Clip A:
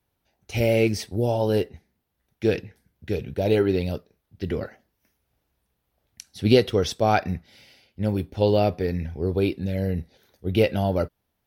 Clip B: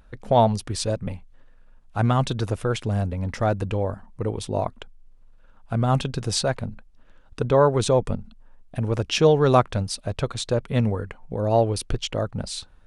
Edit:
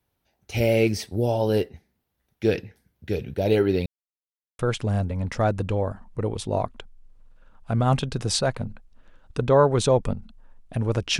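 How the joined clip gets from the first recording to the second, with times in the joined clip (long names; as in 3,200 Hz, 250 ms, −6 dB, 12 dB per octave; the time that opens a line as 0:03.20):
clip A
0:03.86–0:04.59: silence
0:04.59: continue with clip B from 0:02.61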